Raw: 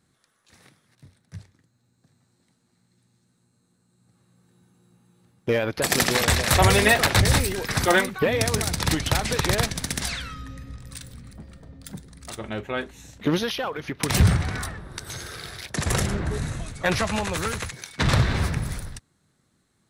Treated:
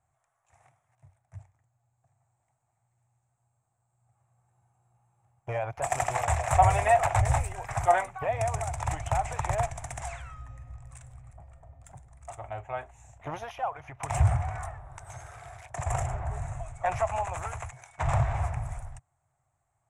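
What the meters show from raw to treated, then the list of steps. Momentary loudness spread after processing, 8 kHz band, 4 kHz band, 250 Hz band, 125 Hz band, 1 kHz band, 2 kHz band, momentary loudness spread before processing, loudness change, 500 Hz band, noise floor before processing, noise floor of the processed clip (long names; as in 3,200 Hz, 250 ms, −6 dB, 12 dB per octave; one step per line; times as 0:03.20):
21 LU, −11.5 dB, −22.5 dB, −18.5 dB, −5.5 dB, +1.0 dB, −11.5 dB, 21 LU, −6.0 dB, −5.0 dB, −69 dBFS, −77 dBFS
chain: drawn EQ curve 130 Hz 0 dB, 190 Hz −24 dB, 490 Hz −12 dB, 700 Hz +10 dB, 1,600 Hz −8 dB, 2,400 Hz −6 dB, 4,400 Hz −27 dB, 7,300 Hz −2 dB, 14,000 Hz −24 dB
level −4.5 dB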